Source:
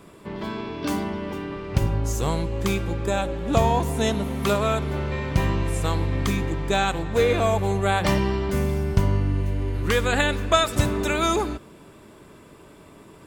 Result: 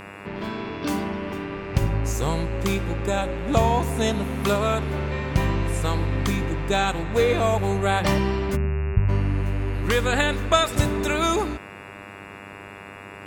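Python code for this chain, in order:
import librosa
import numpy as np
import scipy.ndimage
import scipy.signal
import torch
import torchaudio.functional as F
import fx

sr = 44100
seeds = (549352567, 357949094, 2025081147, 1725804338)

y = fx.spec_expand(x, sr, power=2.3, at=(8.55, 9.08), fade=0.02)
y = fx.dmg_buzz(y, sr, base_hz=100.0, harmonics=28, level_db=-41.0, tilt_db=-1, odd_only=False)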